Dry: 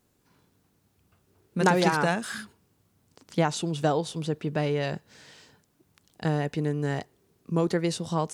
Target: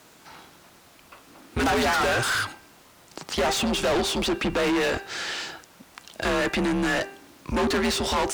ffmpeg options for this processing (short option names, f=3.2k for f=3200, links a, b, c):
-filter_complex "[0:a]afreqshift=-110,bandreject=f=394.5:t=h:w=4,bandreject=f=789:t=h:w=4,bandreject=f=1.1835k:t=h:w=4,bandreject=f=1.578k:t=h:w=4,bandreject=f=1.9725k:t=h:w=4,bandreject=f=2.367k:t=h:w=4,bandreject=f=2.7615k:t=h:w=4,asplit=2[a][b];[b]highpass=f=720:p=1,volume=40dB,asoftclip=type=tanh:threshold=-6.5dB[c];[a][c]amix=inputs=2:normalize=0,lowpass=f=4k:p=1,volume=-6dB,volume=-9dB"